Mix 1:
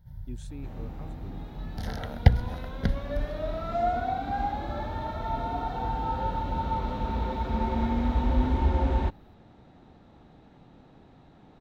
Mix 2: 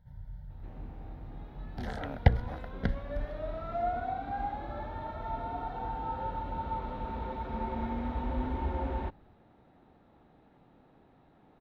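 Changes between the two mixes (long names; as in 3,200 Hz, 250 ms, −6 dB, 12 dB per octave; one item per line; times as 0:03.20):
speech: entry +1.50 s
first sound −5.0 dB
master: add bass and treble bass −5 dB, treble −14 dB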